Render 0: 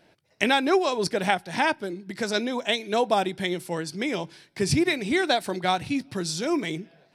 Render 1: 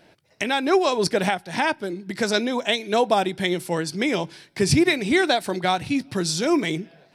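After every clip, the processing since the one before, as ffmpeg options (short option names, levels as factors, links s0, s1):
-af "alimiter=limit=0.224:level=0:latency=1:release=495,volume=1.78"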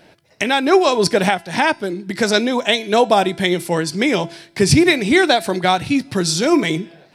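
-af "bandreject=f=336.9:t=h:w=4,bandreject=f=673.8:t=h:w=4,bandreject=f=1010.7:t=h:w=4,bandreject=f=1347.6:t=h:w=4,bandreject=f=1684.5:t=h:w=4,bandreject=f=2021.4:t=h:w=4,bandreject=f=2358.3:t=h:w=4,bandreject=f=2695.2:t=h:w=4,bandreject=f=3032.1:t=h:w=4,bandreject=f=3369:t=h:w=4,bandreject=f=3705.9:t=h:w=4,bandreject=f=4042.8:t=h:w=4,bandreject=f=4379.7:t=h:w=4,bandreject=f=4716.6:t=h:w=4,bandreject=f=5053.5:t=h:w=4,bandreject=f=5390.4:t=h:w=4,bandreject=f=5727.3:t=h:w=4,bandreject=f=6064.2:t=h:w=4,bandreject=f=6401.1:t=h:w=4,bandreject=f=6738:t=h:w=4,bandreject=f=7074.9:t=h:w=4,bandreject=f=7411.8:t=h:w=4,bandreject=f=7748.7:t=h:w=4,bandreject=f=8085.6:t=h:w=4,bandreject=f=8422.5:t=h:w=4,bandreject=f=8759.4:t=h:w=4,bandreject=f=9096.3:t=h:w=4,bandreject=f=9433.2:t=h:w=4,bandreject=f=9770.1:t=h:w=4,volume=2"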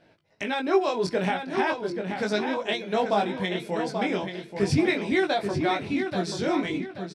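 -filter_complex "[0:a]flanger=delay=18.5:depth=3.2:speed=0.38,aemphasis=mode=reproduction:type=50fm,asplit=2[s0][s1];[s1]adelay=833,lowpass=f=4800:p=1,volume=0.473,asplit=2[s2][s3];[s3]adelay=833,lowpass=f=4800:p=1,volume=0.36,asplit=2[s4][s5];[s5]adelay=833,lowpass=f=4800:p=1,volume=0.36,asplit=2[s6][s7];[s7]adelay=833,lowpass=f=4800:p=1,volume=0.36[s8];[s0][s2][s4][s6][s8]amix=inputs=5:normalize=0,volume=0.422"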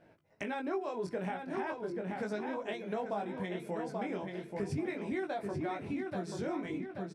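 -af "equalizer=f=4100:t=o:w=1.4:g=-11.5,bandreject=f=133.4:t=h:w=4,bandreject=f=266.8:t=h:w=4,bandreject=f=400.2:t=h:w=4,acompressor=threshold=0.02:ratio=3,volume=0.794"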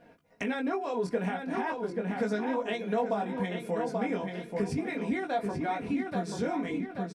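-af "aecho=1:1:4.2:0.61,volume=1.68"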